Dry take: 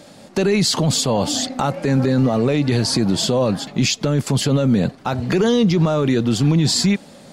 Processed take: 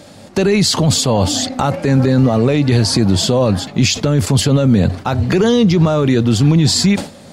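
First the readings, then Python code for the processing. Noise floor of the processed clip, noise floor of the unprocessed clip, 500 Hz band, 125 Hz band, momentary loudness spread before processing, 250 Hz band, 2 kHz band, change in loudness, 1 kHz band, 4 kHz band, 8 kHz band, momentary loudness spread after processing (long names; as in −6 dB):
−38 dBFS, −44 dBFS, +3.5 dB, +5.5 dB, 5 LU, +4.0 dB, +3.5 dB, +4.5 dB, +3.5 dB, +3.5 dB, +4.0 dB, 5 LU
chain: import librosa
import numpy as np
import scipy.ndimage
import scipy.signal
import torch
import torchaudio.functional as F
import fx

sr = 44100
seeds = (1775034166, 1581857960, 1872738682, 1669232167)

y = fx.peak_eq(x, sr, hz=91.0, db=12.5, octaves=0.42)
y = fx.sustainer(y, sr, db_per_s=150.0)
y = y * librosa.db_to_amplitude(3.5)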